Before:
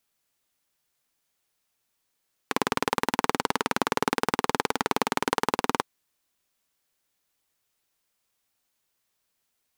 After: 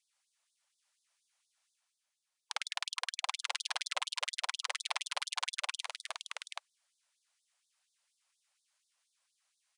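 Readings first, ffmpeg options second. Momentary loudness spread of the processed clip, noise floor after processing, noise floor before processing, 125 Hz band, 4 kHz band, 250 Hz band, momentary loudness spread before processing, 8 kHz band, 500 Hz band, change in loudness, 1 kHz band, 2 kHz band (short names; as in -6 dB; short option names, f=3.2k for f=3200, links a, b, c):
7 LU, under -85 dBFS, -77 dBFS, under -40 dB, -1.5 dB, under -40 dB, 3 LU, -4.5 dB, -22.5 dB, -10.0 dB, -14.5 dB, -8.5 dB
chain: -af "areverse,acompressor=mode=upward:threshold=-44dB:ratio=2.5,areverse,aeval=exprs='0.708*(cos(1*acos(clip(val(0)/0.708,-1,1)))-cos(1*PI/2))+0.316*(cos(3*acos(clip(val(0)/0.708,-1,1)))-cos(3*PI/2))+0.1*(cos(6*acos(clip(val(0)/0.708,-1,1)))-cos(6*PI/2))+0.282*(cos(8*acos(clip(val(0)/0.708,-1,1)))-cos(8*PI/2))':c=same,aresample=22050,aresample=44100,aecho=1:1:56|314|776:0.398|0.299|0.562,afftfilt=real='re*gte(b*sr/1024,510*pow(3500/510,0.5+0.5*sin(2*PI*4.2*pts/sr)))':imag='im*gte(b*sr/1024,510*pow(3500/510,0.5+0.5*sin(2*PI*4.2*pts/sr)))':win_size=1024:overlap=0.75,volume=-9dB"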